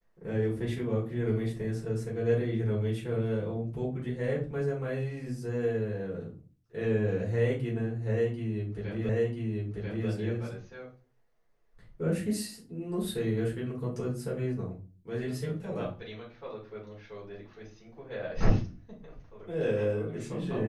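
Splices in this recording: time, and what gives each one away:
9.09 repeat of the last 0.99 s

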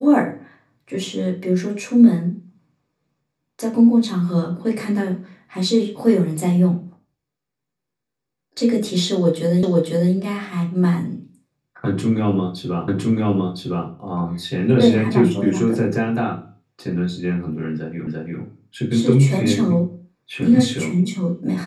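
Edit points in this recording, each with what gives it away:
9.63 repeat of the last 0.5 s
12.88 repeat of the last 1.01 s
18.07 repeat of the last 0.34 s

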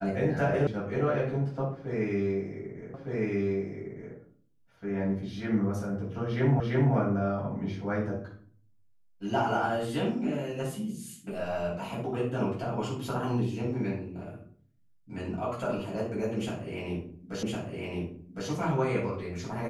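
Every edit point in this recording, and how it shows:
0.67 sound cut off
2.94 repeat of the last 1.21 s
6.6 repeat of the last 0.34 s
17.43 repeat of the last 1.06 s

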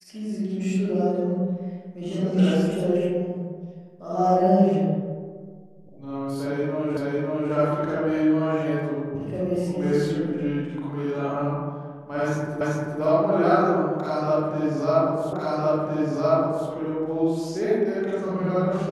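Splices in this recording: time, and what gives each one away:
6.97 repeat of the last 0.55 s
12.61 repeat of the last 0.39 s
15.33 repeat of the last 1.36 s

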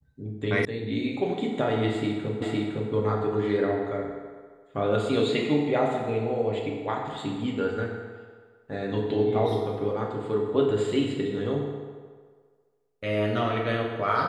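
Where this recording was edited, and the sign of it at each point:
0.65 sound cut off
2.42 repeat of the last 0.51 s

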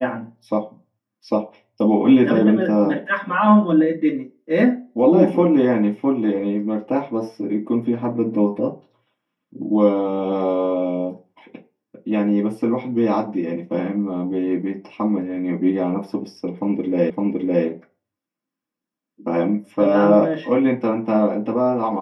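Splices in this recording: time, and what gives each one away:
17.1 repeat of the last 0.56 s

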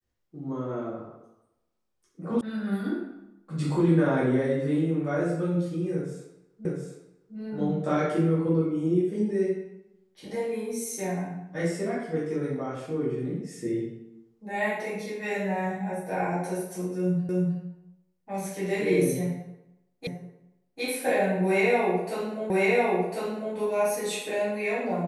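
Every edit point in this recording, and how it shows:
2.41 sound cut off
6.65 repeat of the last 0.71 s
17.29 repeat of the last 0.31 s
20.07 repeat of the last 0.75 s
22.5 repeat of the last 1.05 s

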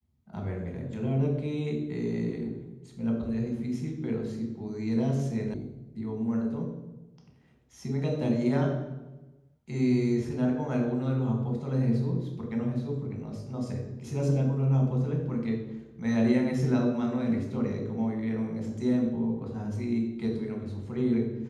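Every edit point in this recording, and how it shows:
5.54 sound cut off

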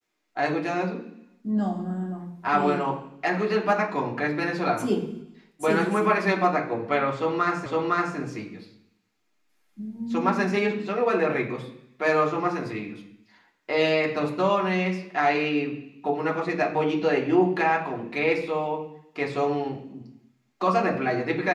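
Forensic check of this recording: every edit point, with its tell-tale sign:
7.66 repeat of the last 0.51 s

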